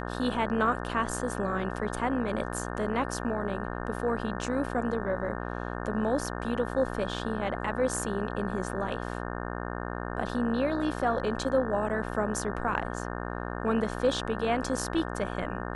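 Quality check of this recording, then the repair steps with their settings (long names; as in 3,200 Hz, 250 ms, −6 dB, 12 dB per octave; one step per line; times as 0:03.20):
mains buzz 60 Hz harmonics 30 −35 dBFS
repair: hum removal 60 Hz, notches 30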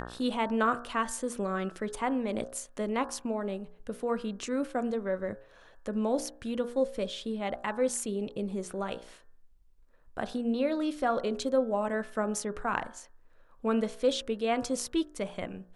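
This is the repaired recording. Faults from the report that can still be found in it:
none of them is left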